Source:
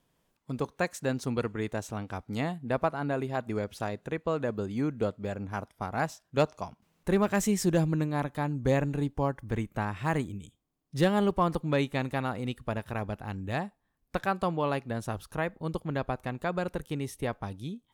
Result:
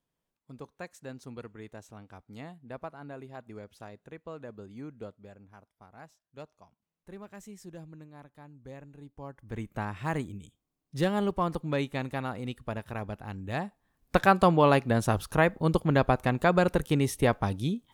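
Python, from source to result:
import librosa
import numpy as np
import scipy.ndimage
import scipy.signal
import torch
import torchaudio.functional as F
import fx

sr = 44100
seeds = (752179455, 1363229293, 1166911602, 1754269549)

y = fx.gain(x, sr, db=fx.line((5.03, -12.5), (5.61, -20.0), (8.95, -20.0), (9.36, -12.0), (9.68, -2.5), (13.45, -2.5), (14.17, 8.0)))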